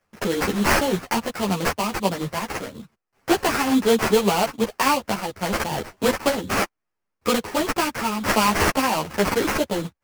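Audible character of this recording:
sample-and-hold tremolo
aliases and images of a low sample rate 3,700 Hz, jitter 20%
a shimmering, thickened sound

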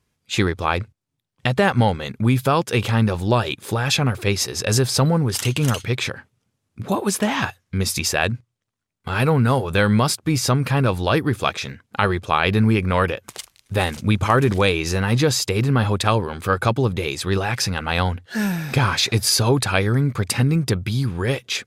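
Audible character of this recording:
background noise floor −76 dBFS
spectral slope −5.0 dB per octave

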